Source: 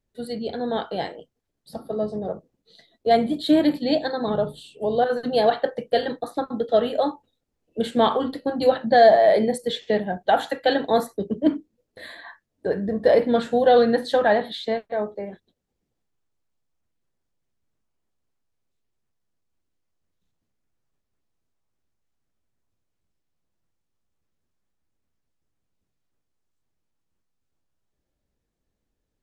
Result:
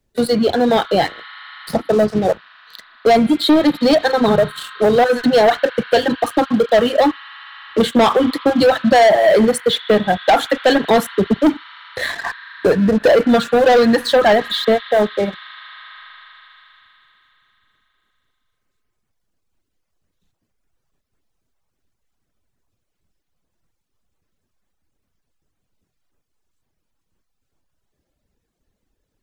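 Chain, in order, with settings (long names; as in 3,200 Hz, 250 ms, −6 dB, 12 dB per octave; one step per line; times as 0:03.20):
reverb reduction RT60 1.5 s
in parallel at −2 dB: downward compressor, threshold −28 dBFS, peak gain reduction 16.5 dB
on the sum: leveller curve on the samples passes 3
on a send at −8 dB: Chebyshev high-pass with heavy ripple 1,000 Hz, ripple 3 dB + convolution reverb RT60 4.0 s, pre-delay 37 ms
on the sum: multiband upward and downward compressor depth 40%
level −1 dB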